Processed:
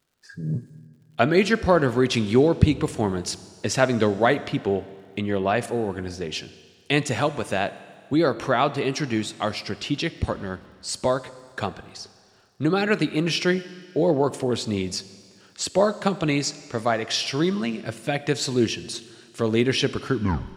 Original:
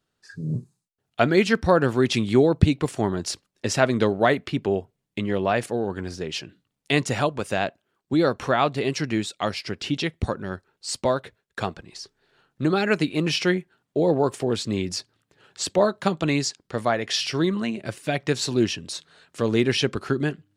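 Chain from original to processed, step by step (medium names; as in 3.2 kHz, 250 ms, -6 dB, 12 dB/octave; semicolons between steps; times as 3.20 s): tape stop on the ending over 0.45 s; crackle 110 per s -54 dBFS; Schroeder reverb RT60 2 s, combs from 26 ms, DRR 15 dB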